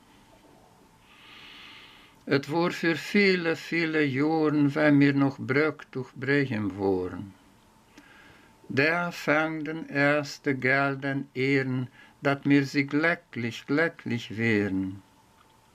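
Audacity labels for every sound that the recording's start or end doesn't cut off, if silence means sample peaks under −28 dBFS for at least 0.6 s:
2.280000	7.200000	sound
8.700000	14.890000	sound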